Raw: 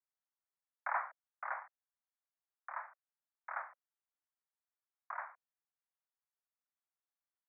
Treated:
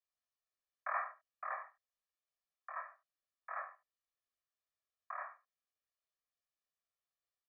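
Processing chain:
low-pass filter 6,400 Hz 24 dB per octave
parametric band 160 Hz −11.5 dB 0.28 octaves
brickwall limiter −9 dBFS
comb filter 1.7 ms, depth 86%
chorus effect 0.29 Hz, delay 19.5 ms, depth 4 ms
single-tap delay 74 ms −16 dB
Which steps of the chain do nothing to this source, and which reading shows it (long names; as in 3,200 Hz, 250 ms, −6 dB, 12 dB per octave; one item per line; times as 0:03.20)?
low-pass filter 6,400 Hz: nothing at its input above 2,400 Hz
parametric band 160 Hz: nothing at its input below 480 Hz
brickwall limiter −9 dBFS: peak of its input −23.0 dBFS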